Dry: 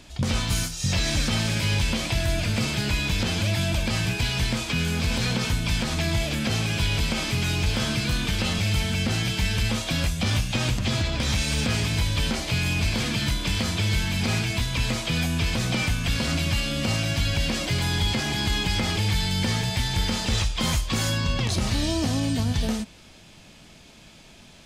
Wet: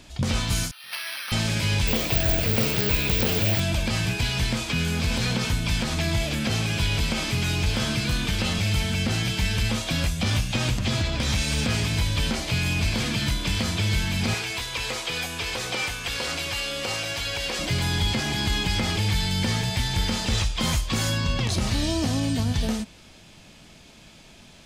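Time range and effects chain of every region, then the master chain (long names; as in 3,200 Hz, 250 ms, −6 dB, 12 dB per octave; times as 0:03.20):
0:00.71–0:01.32: Chebyshev band-pass filter 1,200–4,300 Hz + bad sample-rate conversion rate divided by 6×, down filtered, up hold
0:01.87–0:03.60: parametric band 450 Hz +12 dB 0.34 octaves + bad sample-rate conversion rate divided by 2×, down none, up zero stuff + highs frequency-modulated by the lows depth 0.28 ms
0:14.34–0:17.59: low shelf with overshoot 320 Hz −12 dB, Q 1.5 + notch filter 630 Hz, Q 5.6
whole clip: no processing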